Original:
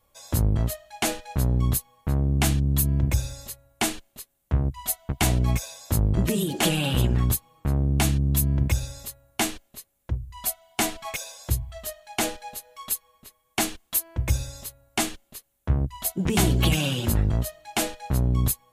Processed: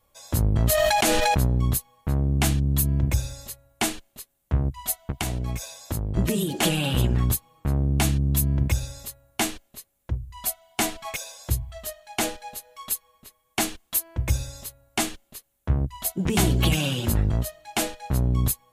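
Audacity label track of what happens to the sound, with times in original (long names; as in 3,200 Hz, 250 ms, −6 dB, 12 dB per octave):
0.540000	1.470000	envelope flattener amount 100%
5.100000	6.160000	downward compressor, threshold −23 dBFS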